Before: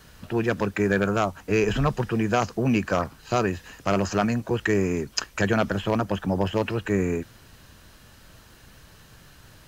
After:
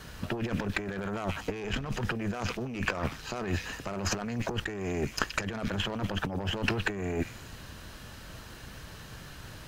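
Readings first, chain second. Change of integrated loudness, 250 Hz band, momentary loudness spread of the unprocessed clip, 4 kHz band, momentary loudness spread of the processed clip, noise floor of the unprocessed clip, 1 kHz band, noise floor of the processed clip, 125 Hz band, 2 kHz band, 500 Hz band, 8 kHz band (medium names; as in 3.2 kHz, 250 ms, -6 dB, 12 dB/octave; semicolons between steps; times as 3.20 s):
-8.0 dB, -9.0 dB, 5 LU, -1.0 dB, 14 LU, -52 dBFS, -9.0 dB, -47 dBFS, -6.5 dB, -4.5 dB, -11.0 dB, -3.0 dB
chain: treble shelf 6.9 kHz -5 dB; Chebyshev shaper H 6 -18 dB, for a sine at -9 dBFS; on a send: repeats whose band climbs or falls 122 ms, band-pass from 2.8 kHz, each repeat 0.7 oct, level -11.5 dB; on the sum: compressor with a negative ratio -31 dBFS, ratio -1; trim -1.5 dB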